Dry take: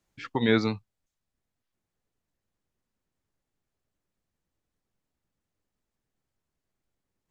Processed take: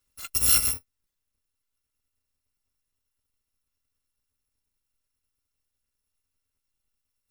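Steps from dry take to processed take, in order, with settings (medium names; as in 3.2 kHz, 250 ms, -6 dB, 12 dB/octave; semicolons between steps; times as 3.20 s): bit-reversed sample order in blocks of 256 samples; Butterworth band-stop 700 Hz, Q 5.3; trim +2 dB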